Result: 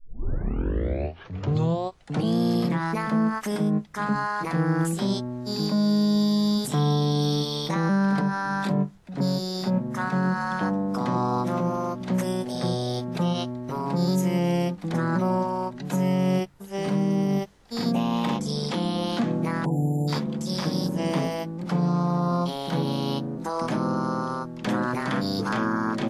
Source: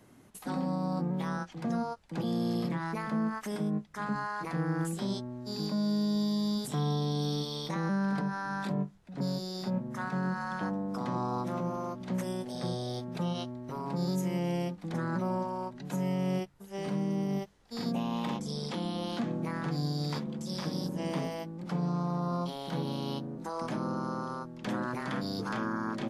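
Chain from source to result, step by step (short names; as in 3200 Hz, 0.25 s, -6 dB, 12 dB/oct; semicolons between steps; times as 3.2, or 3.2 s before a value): tape start at the beginning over 2.38 s; spectral delete 19.65–20.08, 1000–7100 Hz; gain +8 dB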